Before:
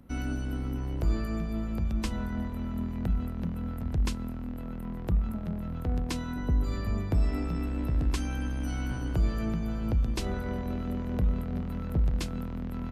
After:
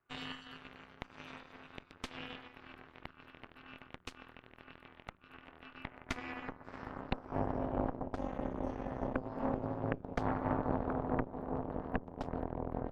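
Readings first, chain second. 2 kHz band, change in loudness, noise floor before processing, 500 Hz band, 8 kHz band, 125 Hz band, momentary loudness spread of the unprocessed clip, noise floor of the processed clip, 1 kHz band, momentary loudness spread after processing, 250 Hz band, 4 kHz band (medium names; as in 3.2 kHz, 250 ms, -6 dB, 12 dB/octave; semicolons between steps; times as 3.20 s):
-3.0 dB, -8.0 dB, -36 dBFS, 0.0 dB, -16.0 dB, -14.0 dB, 6 LU, -62 dBFS, +2.5 dB, 18 LU, -8.5 dB, -6.0 dB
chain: band-stop 1.8 kHz, Q 8.5; compression 6:1, threshold -28 dBFS, peak gain reduction 8 dB; band-pass sweep 1.5 kHz -> 400 Hz, 5.68–7.61 s; ring modulator 130 Hz; Chebyshev shaper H 5 -35 dB, 7 -14 dB, 8 -7 dB, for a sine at -26 dBFS; trim +6 dB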